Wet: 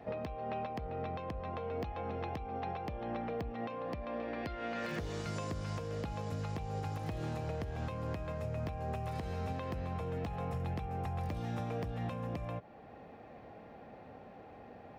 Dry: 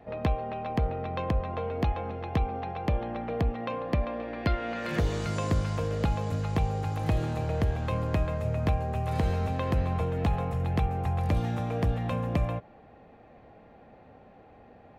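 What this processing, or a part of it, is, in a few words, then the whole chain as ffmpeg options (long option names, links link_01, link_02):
broadcast voice chain: -af "highpass=frequency=84:poles=1,deesser=1,acompressor=threshold=-31dB:ratio=4,equalizer=frequency=5300:width_type=o:width=0.23:gain=5,alimiter=level_in=6.5dB:limit=-24dB:level=0:latency=1:release=449,volume=-6.5dB,volume=1.5dB"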